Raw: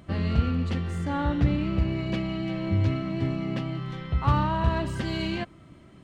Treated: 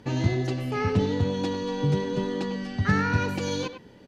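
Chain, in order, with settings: LPF 6100 Hz 12 dB/oct; notch 730 Hz, Q 12; wide varispeed 1.48×; speakerphone echo 0.1 s, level -9 dB

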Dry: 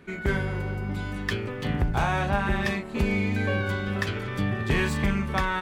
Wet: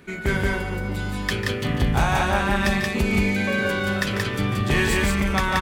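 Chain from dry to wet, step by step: high shelf 4300 Hz +9 dB; loudspeakers at several distances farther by 50 m -11 dB, 61 m -2 dB; gain +2 dB

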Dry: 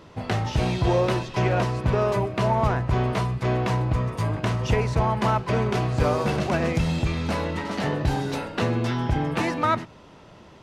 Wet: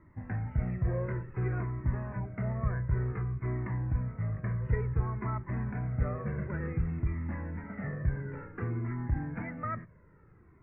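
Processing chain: steep low-pass 2100 Hz 72 dB/oct; bell 750 Hz -14 dB 1.7 oct; cascading flanger falling 0.56 Hz; gain -2.5 dB

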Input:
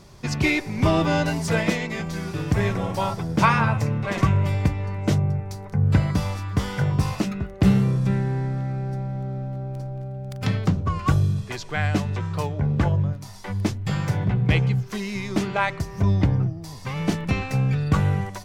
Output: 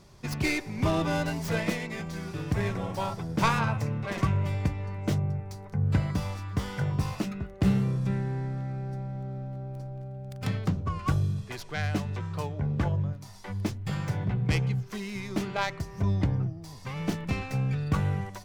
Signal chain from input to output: tracing distortion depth 0.098 ms; gain -6.5 dB

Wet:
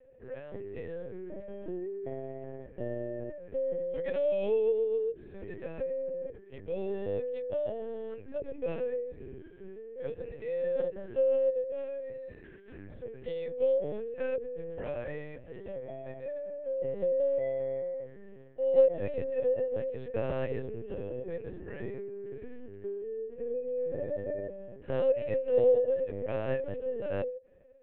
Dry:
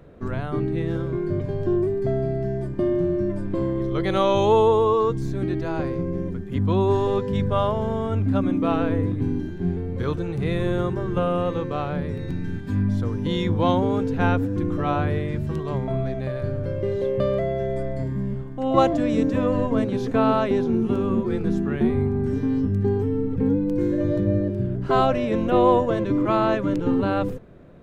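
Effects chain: vowel filter e; LPC vocoder at 8 kHz pitch kept

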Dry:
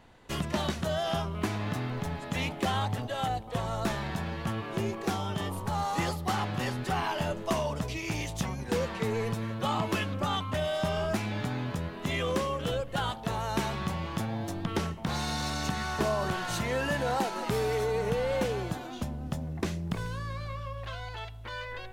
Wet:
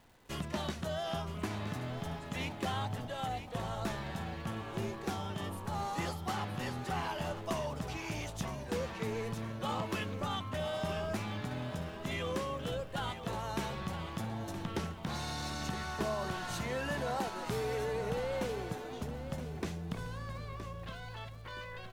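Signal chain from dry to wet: crackle 510/s -50 dBFS; on a send: feedback echo 0.969 s, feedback 35%, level -10.5 dB; on the sum: gain -6.5 dB

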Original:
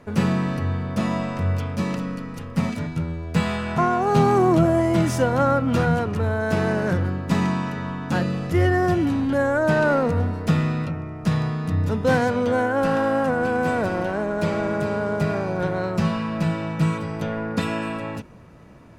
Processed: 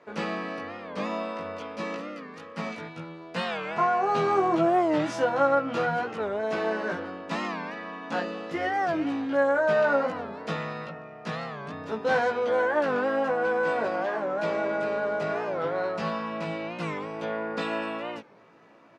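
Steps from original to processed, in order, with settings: BPF 390–4600 Hz; doubler 18 ms -2 dB; record warp 45 rpm, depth 160 cents; gain -4.5 dB

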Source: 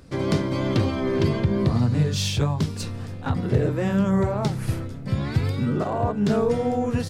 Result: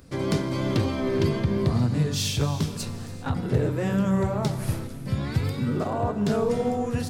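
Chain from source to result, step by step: high shelf 9000 Hz +9.5 dB; non-linear reverb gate 0.43 s flat, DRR 10.5 dB; gain -2.5 dB

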